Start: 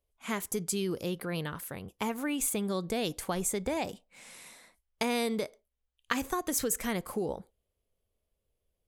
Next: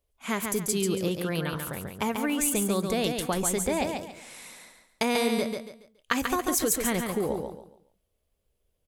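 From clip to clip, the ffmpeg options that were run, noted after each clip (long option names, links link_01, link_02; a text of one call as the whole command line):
ffmpeg -i in.wav -af "aecho=1:1:140|280|420|560:0.562|0.169|0.0506|0.0152,volume=4dB" out.wav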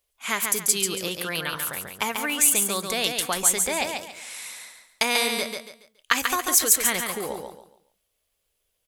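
ffmpeg -i in.wav -af "tiltshelf=frequency=660:gain=-9" out.wav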